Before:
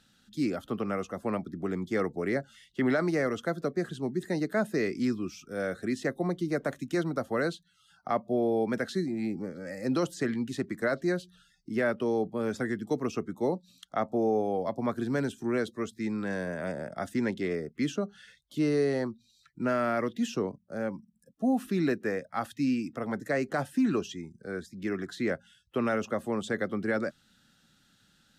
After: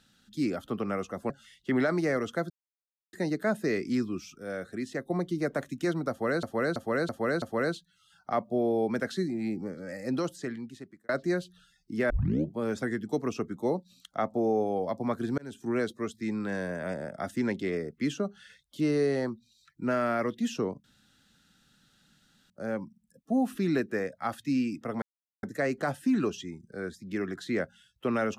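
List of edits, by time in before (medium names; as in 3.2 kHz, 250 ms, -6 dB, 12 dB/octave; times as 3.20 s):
1.30–2.40 s: delete
3.60–4.23 s: mute
5.48–6.20 s: gain -4 dB
7.20–7.53 s: loop, 5 plays
9.69–10.87 s: fade out
11.88 s: tape start 0.45 s
15.16–15.46 s: fade in
20.62 s: insert room tone 1.66 s
23.14 s: insert silence 0.41 s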